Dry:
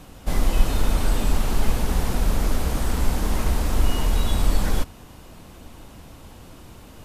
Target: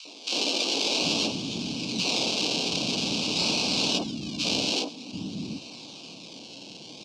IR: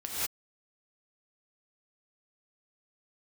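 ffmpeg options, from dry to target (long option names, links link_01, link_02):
-filter_complex "[0:a]asettb=1/sr,asplit=3[link_01][link_02][link_03];[link_01]atrim=end=1.264[link_04];[link_02]atrim=start=1.26:end=1.99,asetpts=PTS-STARTPTS,afade=type=in:duration=0.004:curve=qsin,afade=type=out:start_time=0.726:duration=0.004:curve=qsin,acrossover=split=390|2500[link_05][link_06][link_07];[link_05]acompressor=threshold=-20dB:ratio=4[link_08];[link_06]acompressor=threshold=-48dB:ratio=4[link_09];[link_07]acompressor=threshold=-46dB:ratio=4[link_10];[link_08][link_09][link_10]amix=inputs=3:normalize=0[link_11];[link_03]atrim=start=1.986[link_12];[link_04][link_11]acrossfade=duration=0.004:curve1=hsin:curve2=qsin[link_13];[link_13][link_12]acrossfade=duration=0.004:curve1=qsin:curve2=hsin,asettb=1/sr,asplit=3[link_14][link_15][link_16];[link_14]atrim=end=2.634[link_17];[link_15]atrim=start=2.63:end=3.36,asetpts=PTS-STARTPTS,afade=type=in:duration=0.004:curve=qsin,afade=type=out:start_time=0.726:duration=0.004:curve=qsin,equalizer=frequency=2600:width_type=o:width=2.4:gain=-10[link_18];[link_16]atrim=start=3.356[link_19];[link_17][link_18]acrossfade=duration=0.004:curve1=hsin:curve2=qsin[link_20];[link_20][link_19]acrossfade=duration=0.004:curve1=qsin:curve2=hsin,asplit=3[link_21][link_22][link_23];[link_21]afade=type=out:start_time=3.97:duration=0.02[link_24];[link_22]asplit=3[link_25][link_26][link_27];[link_25]bandpass=frequency=270:width_type=q:width=8,volume=0dB[link_28];[link_26]bandpass=frequency=2290:width_type=q:width=8,volume=-6dB[link_29];[link_27]bandpass=frequency=3010:width_type=q:width=8,volume=-9dB[link_30];[link_28][link_29][link_30]amix=inputs=3:normalize=0,afade=type=in:start_time=3.97:duration=0.02,afade=type=out:start_time=4.38:duration=0.02[link_31];[link_23]afade=type=in:start_time=4.38:duration=0.02[link_32];[link_24][link_31][link_32]amix=inputs=3:normalize=0,acrusher=samples=25:mix=1:aa=0.000001:lfo=1:lforange=25:lforate=0.49,highpass=frequency=160:width=0.5412,highpass=frequency=160:width=1.3066,equalizer=frequency=290:width_type=q:width=4:gain=6,equalizer=frequency=1400:width_type=q:width=4:gain=-7,equalizer=frequency=3400:width_type=q:width=4:gain=-5,lowpass=frequency=5000:width=0.5412,lowpass=frequency=5000:width=1.3066,acrossover=split=280|1200[link_33][link_34][link_35];[link_34]adelay=50[link_36];[link_33]adelay=740[link_37];[link_37][link_36][link_35]amix=inputs=3:normalize=0,asplit=2[link_38][link_39];[1:a]atrim=start_sample=2205[link_40];[link_39][link_40]afir=irnorm=-1:irlink=0,volume=-28dB[link_41];[link_38][link_41]amix=inputs=2:normalize=0,aexciter=amount=5.5:drive=8:freq=2000,asuperstop=centerf=1900:order=4:qfactor=1.6"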